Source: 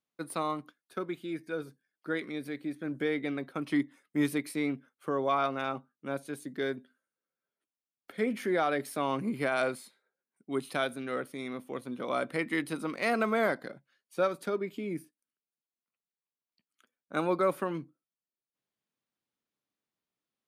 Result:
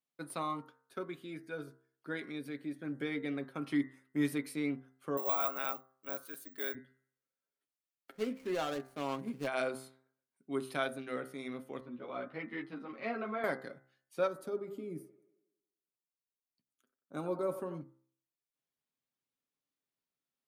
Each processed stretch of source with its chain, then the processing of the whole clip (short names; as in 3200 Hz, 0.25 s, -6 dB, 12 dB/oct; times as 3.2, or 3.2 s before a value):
5.17–6.75 HPF 910 Hz 6 dB/oct + careless resampling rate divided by 2×, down none, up zero stuff
8.11–9.47 median filter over 25 samples + high shelf 2900 Hz +7 dB + upward expander, over -39 dBFS
11.8–13.44 air absorption 270 m + ensemble effect
14.27–17.81 bell 2100 Hz -12.5 dB 2.3 oct + band-limited delay 91 ms, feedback 54%, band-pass 820 Hz, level -11 dB
whole clip: comb 7.4 ms, depth 36%; de-hum 65.59 Hz, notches 31; gain -5 dB